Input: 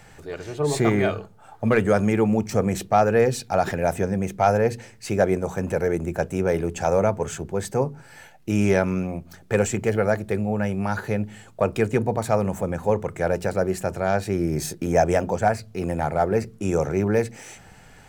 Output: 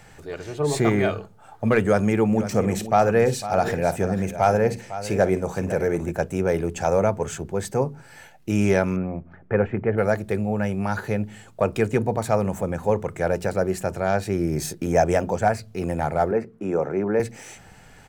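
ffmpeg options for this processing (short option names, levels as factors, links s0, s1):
-filter_complex "[0:a]asplit=3[s0][s1][s2];[s0]afade=t=out:st=2.31:d=0.02[s3];[s1]aecho=1:1:53|504:0.168|0.224,afade=t=in:st=2.31:d=0.02,afade=t=out:st=6.11:d=0.02[s4];[s2]afade=t=in:st=6.11:d=0.02[s5];[s3][s4][s5]amix=inputs=3:normalize=0,asettb=1/sr,asplit=3[s6][s7][s8];[s6]atrim=end=8.964[s9];[s7]atrim=start=8.96:end=9.98,asetpts=PTS-STARTPTS,afade=t=in:d=0.004:c=qsin,afade=t=out:st=1.016:d=0.004:c=qsin,lowpass=f=2000:w=0.5412,lowpass=f=2000:w=1.3066[s10];[s8]atrim=start=9.976[s11];[s9][s10]acrossfade=d=0.004:c1=hsin:c2=qsin[s12];[s12][s11]acrossfade=d=0.004:c1=qsin:c2=hsin,asettb=1/sr,asplit=3[s13][s14][s15];[s13]atrim=end=16.314[s16];[s14]atrim=start=16.31:end=17.2,asetpts=PTS-STARTPTS,afade=t=in:d=0.004:c=qsin,afade=t=out:st=0.886:d=0.004:c=qsin,acrossover=split=170 2200:gain=0.158 1 0.126[s17][s18][s19];[s17][s18][s19]amix=inputs=3:normalize=0[s20];[s15]atrim=start=17.196[s21];[s16][s20]acrossfade=d=0.004:c1=hsin:c2=qsin[s22];[s22][s21]acrossfade=d=0.004:c1=qsin:c2=hsin"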